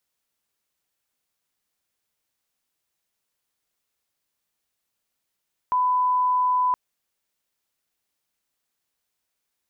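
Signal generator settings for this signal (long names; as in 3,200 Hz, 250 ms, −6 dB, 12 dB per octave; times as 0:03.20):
line-up tone −18 dBFS 1.02 s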